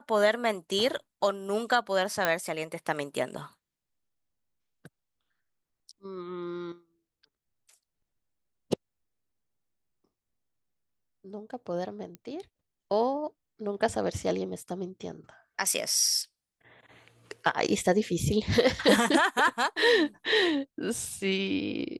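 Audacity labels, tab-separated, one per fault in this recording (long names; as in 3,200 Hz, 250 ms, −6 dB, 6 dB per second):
2.250000	2.250000	click −10 dBFS
12.150000	12.150000	click −27 dBFS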